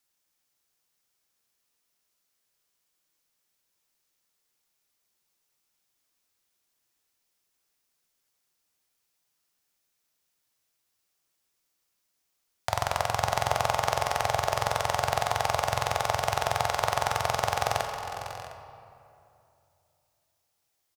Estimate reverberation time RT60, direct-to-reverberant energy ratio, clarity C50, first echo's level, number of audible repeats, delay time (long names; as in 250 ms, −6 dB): 2.6 s, 3.0 dB, 4.0 dB, −12.5 dB, 3, 503 ms